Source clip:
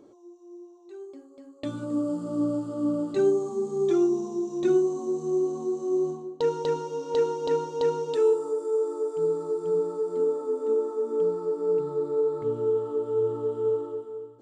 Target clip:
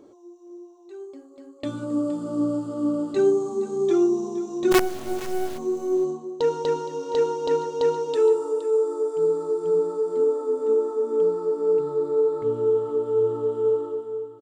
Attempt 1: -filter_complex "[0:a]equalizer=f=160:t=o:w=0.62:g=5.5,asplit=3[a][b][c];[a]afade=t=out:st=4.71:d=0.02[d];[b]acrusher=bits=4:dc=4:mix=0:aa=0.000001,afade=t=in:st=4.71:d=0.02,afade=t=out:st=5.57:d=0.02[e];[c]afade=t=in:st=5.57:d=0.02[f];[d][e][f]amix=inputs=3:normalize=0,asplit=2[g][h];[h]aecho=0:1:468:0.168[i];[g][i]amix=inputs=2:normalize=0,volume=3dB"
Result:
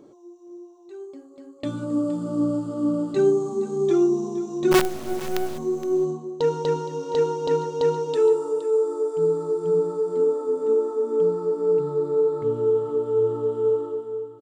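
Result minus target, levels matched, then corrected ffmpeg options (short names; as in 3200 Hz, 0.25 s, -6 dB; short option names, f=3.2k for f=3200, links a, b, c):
125 Hz band +6.0 dB
-filter_complex "[0:a]equalizer=f=160:t=o:w=0.62:g=-4,asplit=3[a][b][c];[a]afade=t=out:st=4.71:d=0.02[d];[b]acrusher=bits=4:dc=4:mix=0:aa=0.000001,afade=t=in:st=4.71:d=0.02,afade=t=out:st=5.57:d=0.02[e];[c]afade=t=in:st=5.57:d=0.02[f];[d][e][f]amix=inputs=3:normalize=0,asplit=2[g][h];[h]aecho=0:1:468:0.168[i];[g][i]amix=inputs=2:normalize=0,volume=3dB"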